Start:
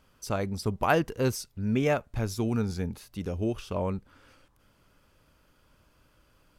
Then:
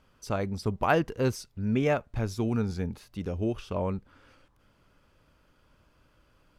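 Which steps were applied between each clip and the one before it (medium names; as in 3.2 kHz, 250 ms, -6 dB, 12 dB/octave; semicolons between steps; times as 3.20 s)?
treble shelf 7 kHz -10 dB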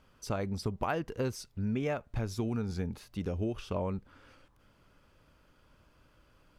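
compression 5:1, threshold -29 dBFS, peak gain reduction 10 dB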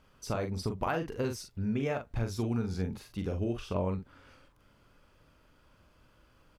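doubling 43 ms -6 dB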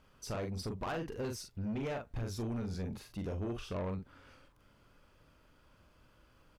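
saturation -31 dBFS, distortion -11 dB; trim -1.5 dB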